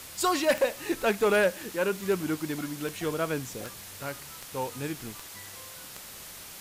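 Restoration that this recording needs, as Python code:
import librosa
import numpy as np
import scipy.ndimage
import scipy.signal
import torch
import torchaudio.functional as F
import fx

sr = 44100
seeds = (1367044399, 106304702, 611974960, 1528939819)

y = fx.fix_declick_ar(x, sr, threshold=10.0)
y = fx.noise_reduce(y, sr, print_start_s=6.01, print_end_s=6.51, reduce_db=28.0)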